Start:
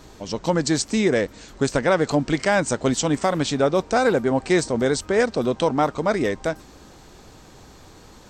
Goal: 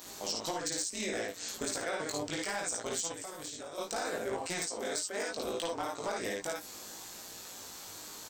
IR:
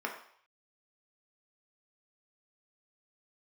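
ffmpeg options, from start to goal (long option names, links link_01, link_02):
-filter_complex "[0:a]tremolo=f=180:d=0.947,aemphasis=mode=production:type=riaa,aecho=1:1:54|64:0.708|0.447,acompressor=threshold=-31dB:ratio=8,flanger=delay=17.5:depth=2.5:speed=0.69,asoftclip=type=hard:threshold=-29.5dB,asettb=1/sr,asplit=3[link_01][link_02][link_03];[link_01]atrim=end=3.124[link_04];[link_02]atrim=start=3.12:end=3.78,asetpts=PTS-STARTPTS,afade=type=in:duration=0.004:curve=qsin,afade=type=out:start_time=0.656:duration=0.004:curve=qsin,acrossover=split=640|6300[link_05][link_06][link_07];[link_05]acompressor=threshold=-50dB:ratio=4[link_08];[link_06]acompressor=threshold=-51dB:ratio=4[link_09];[link_07]acompressor=threshold=-47dB:ratio=4[link_10];[link_08][link_09][link_10]amix=inputs=3:normalize=0[link_11];[link_03]atrim=start=3.776[link_12];[link_04][link_11]acrossfade=duration=0.004:curve1=hsin:curve2=qsin[link_13];[link_13][link_12]acrossfade=duration=0.004:curve1=qsin:curve2=hsin,asettb=1/sr,asplit=3[link_14][link_15][link_16];[link_14]atrim=end=4.664[link_17];[link_15]atrim=start=4.66:end=5.31,asetpts=PTS-STARTPTS,afade=type=in:duration=0.004:curve=qsin,afade=type=out:start_time=0.646:duration=0.004:curve=qsin,lowshelf=frequency=160:gain=-10.5[link_18];[link_16]atrim=start=5.306[link_19];[link_17][link_18]acrossfade=duration=0.004:curve1=hsin:curve2=qsin[link_20];[link_20][link_19]acrossfade=duration=0.004:curve1=qsin:curve2=hsin,volume=2.5dB"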